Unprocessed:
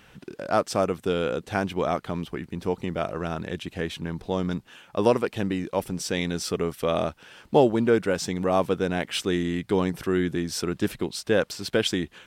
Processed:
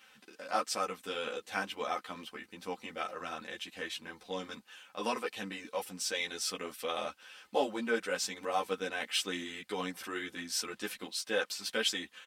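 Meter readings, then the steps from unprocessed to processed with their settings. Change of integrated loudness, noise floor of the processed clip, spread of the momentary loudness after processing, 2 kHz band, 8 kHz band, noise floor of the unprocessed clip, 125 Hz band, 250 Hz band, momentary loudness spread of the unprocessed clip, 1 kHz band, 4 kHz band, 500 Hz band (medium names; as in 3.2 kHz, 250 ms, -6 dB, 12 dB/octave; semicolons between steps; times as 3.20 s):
-9.5 dB, -64 dBFS, 10 LU, -4.0 dB, -2.5 dB, -56 dBFS, -23.5 dB, -16.5 dB, 9 LU, -7.5 dB, -3.0 dB, -13.0 dB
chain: high-pass 1.5 kHz 6 dB/octave; comb 3.9 ms, depth 50%; three-phase chorus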